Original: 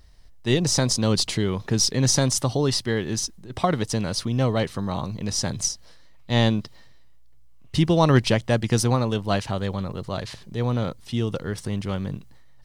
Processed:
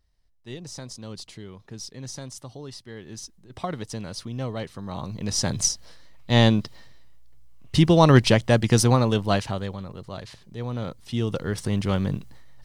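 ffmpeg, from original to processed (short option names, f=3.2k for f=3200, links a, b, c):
-af "volume=13.5dB,afade=t=in:st=2.88:d=0.67:silence=0.375837,afade=t=in:st=4.82:d=0.78:silence=0.281838,afade=t=out:st=9.19:d=0.59:silence=0.334965,afade=t=in:st=10.7:d=1.24:silence=0.281838"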